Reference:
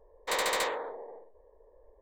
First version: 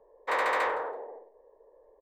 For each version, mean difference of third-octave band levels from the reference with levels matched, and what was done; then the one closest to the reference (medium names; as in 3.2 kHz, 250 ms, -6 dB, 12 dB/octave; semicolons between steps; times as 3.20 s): 2.5 dB: three-band isolator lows -17 dB, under 220 Hz, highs -17 dB, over 2.4 kHz; in parallel at -4 dB: saturation -34.5 dBFS, distortion -9 dB; on the sum: feedback delay 164 ms, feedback 16%, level -20 dB; dynamic bell 1.4 kHz, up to +6 dB, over -44 dBFS, Q 0.72; trim -2 dB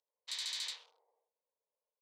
10.0 dB: local Wiener filter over 25 samples; ladder band-pass 4.9 kHz, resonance 40%; on a send: delay 82 ms -4.5 dB; on the sum: peak limiter -40.5 dBFS, peak gain reduction 8.5 dB; trim +11.5 dB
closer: first